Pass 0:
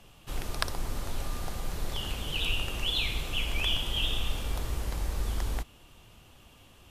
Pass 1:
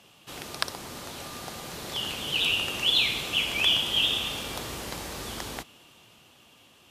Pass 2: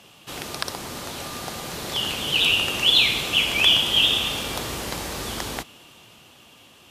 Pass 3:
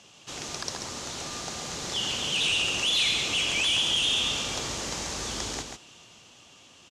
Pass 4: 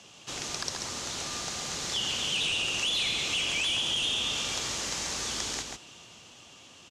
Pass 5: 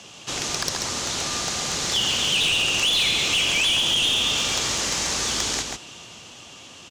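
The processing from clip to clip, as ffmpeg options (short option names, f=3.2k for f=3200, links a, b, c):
-af "highpass=160,equalizer=f=4.1k:w=0.62:g=4,dynaudnorm=f=210:g=13:m=4dB"
-af "alimiter=level_in=8.5dB:limit=-1dB:release=50:level=0:latency=1,volume=-2.5dB"
-af "volume=19.5dB,asoftclip=hard,volume=-19.5dB,lowpass=f=6.6k:t=q:w=2.8,aecho=1:1:137:0.531,volume=-5.5dB"
-filter_complex "[0:a]acrossover=split=110|1200[a][b][c];[a]acompressor=threshold=-52dB:ratio=4[d];[b]acompressor=threshold=-43dB:ratio=4[e];[c]acompressor=threshold=-29dB:ratio=4[f];[d][e][f]amix=inputs=3:normalize=0,volume=1.5dB"
-af "aeval=exprs='clip(val(0),-1,0.0501)':c=same,volume=8.5dB"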